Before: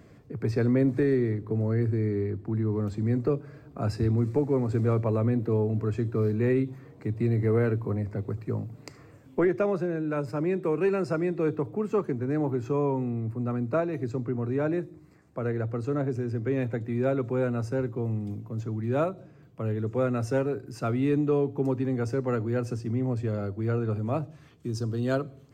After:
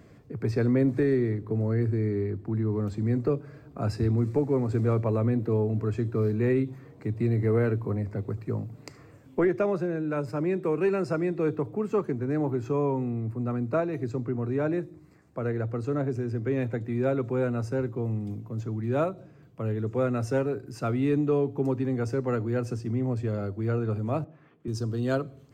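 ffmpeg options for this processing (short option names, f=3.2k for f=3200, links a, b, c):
-filter_complex "[0:a]asettb=1/sr,asplit=3[a][b][c];[a]atrim=end=24.244[d];[b]atrim=start=24.24:end=24.68,asetpts=PTS-STARTPTS,afade=t=in:d=0.004:c=qsin,afade=t=out:st=0.436:d=0.004:c=qsin,acrossover=split=150 2400:gain=0.0708 1 0.0708[e][f][g];[e][f][g]amix=inputs=3:normalize=0[h];[c]atrim=start=24.676[i];[d][h]acrossfade=d=0.004:c1=hsin:c2=qsin[j];[j][i]acrossfade=d=0.004:c1=qsin:c2=hsin"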